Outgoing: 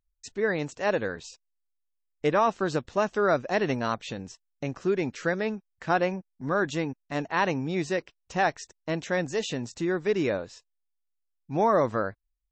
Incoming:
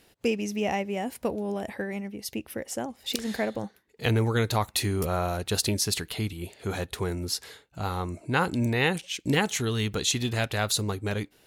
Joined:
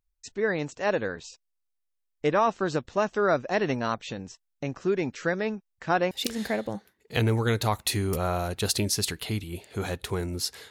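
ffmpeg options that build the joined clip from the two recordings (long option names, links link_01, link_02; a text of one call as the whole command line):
ffmpeg -i cue0.wav -i cue1.wav -filter_complex "[0:a]apad=whole_dur=10.7,atrim=end=10.7,atrim=end=6.112[link_01];[1:a]atrim=start=2.998:end=7.59[link_02];[link_01][link_02]acrossfade=duration=0.004:curve1=hsin:curve2=hsin" out.wav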